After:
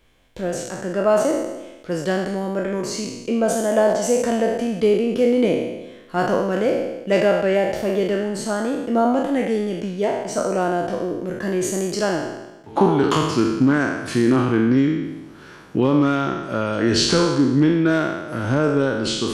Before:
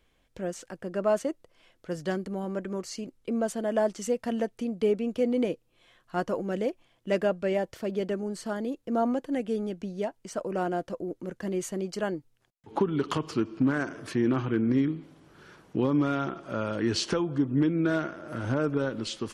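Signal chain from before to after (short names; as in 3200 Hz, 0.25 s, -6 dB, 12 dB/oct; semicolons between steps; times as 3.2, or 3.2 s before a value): spectral trails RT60 1.07 s; gain +7 dB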